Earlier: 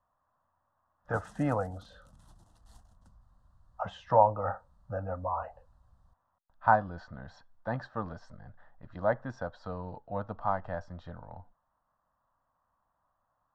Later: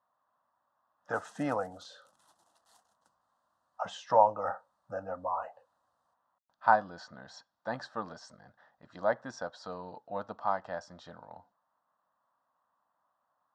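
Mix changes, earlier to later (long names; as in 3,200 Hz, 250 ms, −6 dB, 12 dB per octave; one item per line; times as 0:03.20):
speech: remove three-way crossover with the lows and the highs turned down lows −14 dB, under 410 Hz, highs −15 dB, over 3,200 Hz
master: add high-pass filter 550 Hz 12 dB per octave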